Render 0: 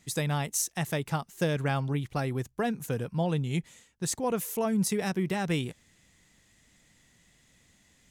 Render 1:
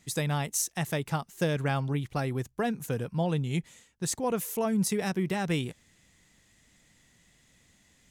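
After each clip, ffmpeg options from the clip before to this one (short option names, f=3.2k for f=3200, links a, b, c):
-af anull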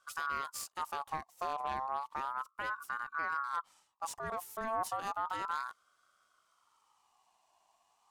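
-af "lowshelf=f=300:t=q:w=1.5:g=6,aeval=exprs='(tanh(12.6*val(0)+0.6)-tanh(0.6))/12.6':c=same,aeval=exprs='val(0)*sin(2*PI*1100*n/s+1100*0.2/0.33*sin(2*PI*0.33*n/s))':c=same,volume=-7dB"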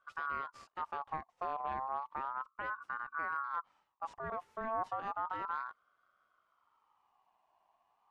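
-af "lowpass=2k,volume=-1dB"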